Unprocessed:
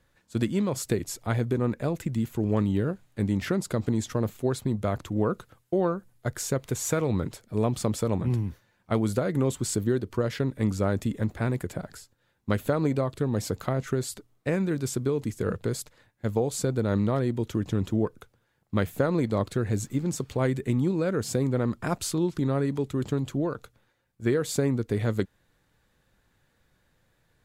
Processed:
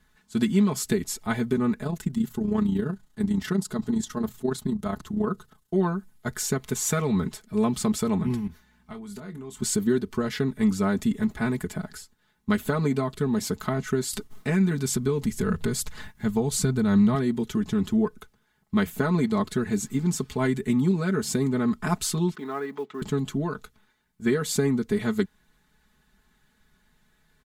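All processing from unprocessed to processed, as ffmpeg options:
-filter_complex "[0:a]asettb=1/sr,asplit=3[s0][s1][s2];[s0]atrim=end=1.834[s3];[s1]atrim=start=1.83:end=5.74,asetpts=PTS-STARTPTS,afade=t=in:d=0.004:c=qsin,afade=t=out:st=3.906:d=0.004:c=qsin,equalizer=f=2300:t=o:w=0.4:g=-7.5,bandreject=f=60:t=h:w=6,bandreject=f=120:t=h:w=6,tremolo=f=29:d=0.621[s4];[s2]atrim=start=5.736[s5];[s3][s4]acrossfade=d=0.004:c1=hsin:c2=qsin[s6];[s6][s5]acrossfade=d=0.004:c1=qsin:c2=hsin,asettb=1/sr,asplit=3[s7][s8][s9];[s7]atrim=end=8.474[s10];[s8]atrim=start=8.47:end=9.62,asetpts=PTS-STARTPTS,afade=t=in:d=0.004:c=qsin,afade=t=out:st=1.146:d=0.004:c=qsin,acompressor=threshold=0.01:ratio=4:attack=3.2:release=140:knee=1:detection=peak,aeval=exprs='val(0)+0.000631*(sin(2*PI*60*n/s)+sin(2*PI*2*60*n/s)/2+sin(2*PI*3*60*n/s)/3+sin(2*PI*4*60*n/s)/4+sin(2*PI*5*60*n/s)/5)':c=same,asplit=2[s11][s12];[s12]adelay=25,volume=0.299[s13];[s11][s13]amix=inputs=2:normalize=0,atrim=end_sample=50715[s14];[s9]atrim=start=9.616[s15];[s10][s14]acrossfade=d=0.004:c1=hsin:c2=qsin[s16];[s16][s15]acrossfade=d=0.004:c1=qsin:c2=hsin,asettb=1/sr,asplit=3[s17][s18][s19];[s17]atrim=end=14.134[s20];[s18]atrim=start=14.13:end=17.15,asetpts=PTS-STARTPTS,afade=t=in:d=0.004:c=qsin,afade=t=out:st=3.016:d=0.004:c=qsin,asubboost=boost=3.5:cutoff=180,acompressor=mode=upward:threshold=0.0631:ratio=2.5:attack=3.2:release=140:knee=2.83:detection=peak,agate=range=0.0224:threshold=0.01:ratio=3:release=100:detection=peak[s21];[s19]atrim=start=17.146[s22];[s20][s21]acrossfade=d=0.004:c1=hsin:c2=qsin[s23];[s23][s22]acrossfade=d=0.004:c1=qsin:c2=hsin,asettb=1/sr,asplit=3[s24][s25][s26];[s24]atrim=end=22.354[s27];[s25]atrim=start=22.35:end=23.02,asetpts=PTS-STARTPTS,afade=t=in:d=0.004:c=qsin,afade=t=out:st=0.666:d=0.004:c=qsin,highpass=490,lowpass=2500,acrusher=bits=9:mode=log:mix=0:aa=0.000001[s28];[s26]atrim=start=23.016[s29];[s27][s28]acrossfade=d=0.004:c1=hsin:c2=qsin[s30];[s30][s29]acrossfade=d=0.004:c1=qsin:c2=hsin,equalizer=f=540:t=o:w=0.46:g=-12.5,bandreject=f=2500:w=24,aecho=1:1:4.7:0.86,volume=1.19"

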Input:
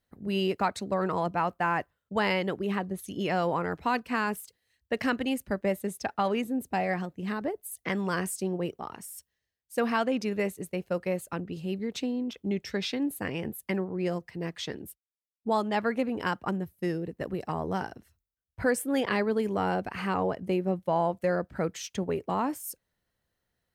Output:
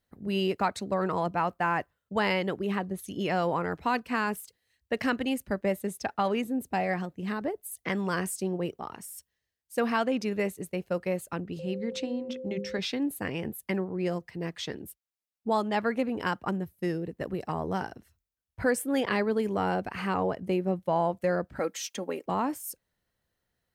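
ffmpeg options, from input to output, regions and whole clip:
-filter_complex "[0:a]asettb=1/sr,asplit=3[s0][s1][s2];[s0]atrim=end=11.594[s3];[s1]atrim=start=11.59:end=12.79,asetpts=PTS-STARTPTS,afade=t=in:d=0.004:c=qsin,afade=t=out:st=1.196:d=0.004:c=qsin,lowpass=8700,bandreject=f=50:t=h:w=6,bandreject=f=100:t=h:w=6,bandreject=f=150:t=h:w=6,bandreject=f=200:t=h:w=6,bandreject=f=250:t=h:w=6,bandreject=f=300:t=h:w=6,bandreject=f=350:t=h:w=6,bandreject=f=400:t=h:w=6,bandreject=f=450:t=h:w=6,bandreject=f=500:t=h:w=6,aeval=exprs='val(0)+0.0141*sin(2*PI*520*n/s)':c=same[s4];[s2]atrim=start=12.786[s5];[s3][s4]acrossfade=d=0.004:c1=hsin:c2=qsin[s6];[s6][s5]acrossfade=d=0.004:c1=qsin:c2=hsin,asettb=1/sr,asplit=3[s7][s8][s9];[s7]atrim=end=21.594[s10];[s8]atrim=start=21.59:end=22.26,asetpts=PTS-STARTPTS,afade=t=in:d=0.004:c=qsin,afade=t=out:st=0.666:d=0.004:c=qsin,highpass=300,highshelf=f=7400:g=6,aecho=1:1:3.7:0.44,atrim=end_sample=29547[s11];[s9]atrim=start=22.256[s12];[s10][s11]acrossfade=d=0.004:c1=hsin:c2=qsin[s13];[s13][s12]acrossfade=d=0.004:c1=qsin:c2=hsin"

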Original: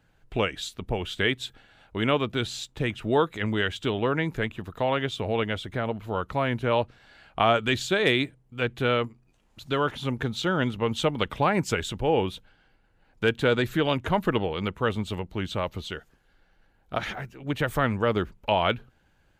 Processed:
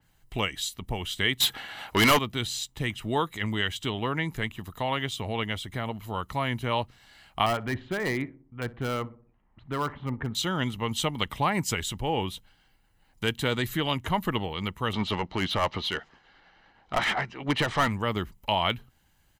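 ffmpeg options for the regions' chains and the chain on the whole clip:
-filter_complex "[0:a]asettb=1/sr,asplit=3[s0][s1][s2];[s0]atrim=end=1.404[s3];[s1]atrim=start=1.4:end=2.19,asetpts=PTS-STARTPTS,afade=t=in:d=0.004:c=qsin,afade=t=out:st=0.786:d=0.004:c=qsin,asplit=2[s4][s5];[s5]highpass=f=720:p=1,volume=25.1,asoftclip=type=tanh:threshold=0.398[s6];[s4][s6]amix=inputs=2:normalize=0,lowpass=f=2200:p=1,volume=0.501,equalizer=f=12000:t=o:w=0.25:g=10[s7];[s2]atrim=start=2.186[s8];[s3][s7]acrossfade=d=0.004:c1=hsin:c2=qsin[s9];[s9][s8]acrossfade=d=0.004:c1=qsin:c2=hsin,asettb=1/sr,asplit=3[s10][s11][s12];[s10]atrim=end=7.464[s13];[s11]atrim=start=7.46:end=10.35,asetpts=PTS-STARTPTS,afade=t=in:d=0.004:c=qsin,afade=t=out:st=2.886:d=0.004:c=qsin,lowpass=f=1900:w=0.5412,lowpass=f=1900:w=1.3066,volume=7.94,asoftclip=hard,volume=0.126,asplit=2[s14][s15];[s15]adelay=61,lowpass=f=970:p=1,volume=0.15,asplit=2[s16][s17];[s17]adelay=61,lowpass=f=970:p=1,volume=0.52,asplit=2[s18][s19];[s19]adelay=61,lowpass=f=970:p=1,volume=0.52,asplit=2[s20][s21];[s21]adelay=61,lowpass=f=970:p=1,volume=0.52,asplit=2[s22][s23];[s23]adelay=61,lowpass=f=970:p=1,volume=0.52[s24];[s14][s16][s18][s20][s22][s24]amix=inputs=6:normalize=0,atrim=end_sample=127449[s25];[s12]atrim=start=10.346[s26];[s13][s25]acrossfade=d=0.004:c1=hsin:c2=qsin[s27];[s27][s26]acrossfade=d=0.004:c1=qsin:c2=hsin,asettb=1/sr,asplit=3[s28][s29][s30];[s28]atrim=end=14.934[s31];[s29]atrim=start=14.93:end=17.88,asetpts=PTS-STARTPTS,afade=t=in:d=0.004:c=qsin,afade=t=out:st=2.946:d=0.004:c=qsin,lowpass=f=5400:w=0.5412,lowpass=f=5400:w=1.3066,asplit=2[s32][s33];[s33]highpass=f=720:p=1,volume=15.8,asoftclip=type=tanh:threshold=0.355[s34];[s32][s34]amix=inputs=2:normalize=0,lowpass=f=1400:p=1,volume=0.501,tremolo=f=9.7:d=0.31[s35];[s30]atrim=start=17.876[s36];[s31][s35]acrossfade=d=0.004:c1=hsin:c2=qsin[s37];[s37][s36]acrossfade=d=0.004:c1=qsin:c2=hsin,aemphasis=mode=production:type=75kf,aecho=1:1:1:0.39,adynamicequalizer=threshold=0.0141:dfrequency=4100:dqfactor=0.7:tfrequency=4100:tqfactor=0.7:attack=5:release=100:ratio=0.375:range=2:mode=cutabove:tftype=highshelf,volume=0.631"

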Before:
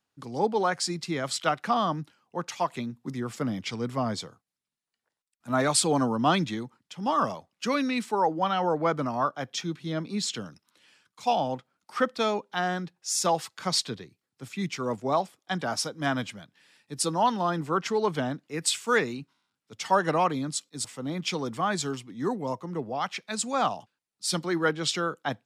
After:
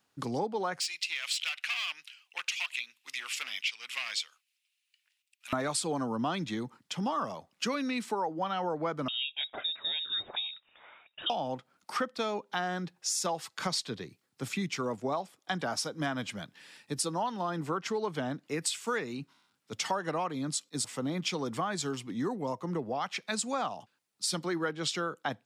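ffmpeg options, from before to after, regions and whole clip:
-filter_complex "[0:a]asettb=1/sr,asplit=3[s0][s1][s2];[s0]atrim=end=0.804[s3];[s1]atrim=start=0.8:end=5.53,asetpts=PTS-STARTPTS,afade=t=in:d=0.004:c=qsin,afade=t=out:st=4.726:d=0.004:c=qsin,asoftclip=type=hard:threshold=0.0501,highpass=f=2600:t=q:w=4.3[s4];[s2]atrim=start=5.526[s5];[s3][s4]acrossfade=d=0.004:c1=hsin:c2=qsin[s6];[s6][s5]acrossfade=d=0.004:c1=qsin:c2=hsin,asettb=1/sr,asplit=3[s7][s8][s9];[s7]atrim=end=9.084[s10];[s8]atrim=start=9.08:end=11.3,asetpts=PTS-STARTPTS,afade=t=in:d=0.004:c=qsin,afade=t=out:st=2.216:d=0.004:c=qsin,acrossover=split=260|770[s11][s12][s13];[s11]acompressor=threshold=0.02:ratio=4[s14];[s12]acompressor=threshold=0.0112:ratio=4[s15];[s13]acompressor=threshold=0.0112:ratio=4[s16];[s14][s15][s16]amix=inputs=3:normalize=0,lowpass=f=3300:t=q:w=0.5098,lowpass=f=3300:t=q:w=0.6013,lowpass=f=3300:t=q:w=0.9,lowpass=f=3300:t=q:w=2.563,afreqshift=-3900[s17];[s9]atrim=start=11.296[s18];[s10][s17]acrossfade=d=0.004:c1=hsin:c2=qsin[s19];[s19][s18]acrossfade=d=0.004:c1=qsin:c2=hsin,lowshelf=f=76:g=-7.5,acompressor=threshold=0.0126:ratio=5,volume=2.24"

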